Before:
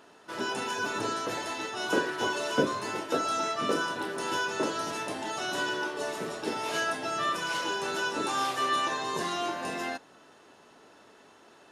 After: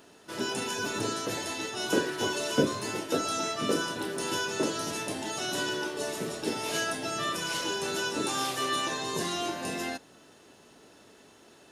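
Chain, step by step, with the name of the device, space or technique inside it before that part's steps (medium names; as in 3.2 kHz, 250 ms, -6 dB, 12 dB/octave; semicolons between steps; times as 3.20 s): smiley-face EQ (bass shelf 140 Hz +6 dB; peaking EQ 1.1 kHz -6.5 dB 1.7 oct; treble shelf 7.9 kHz +7.5 dB); trim +2 dB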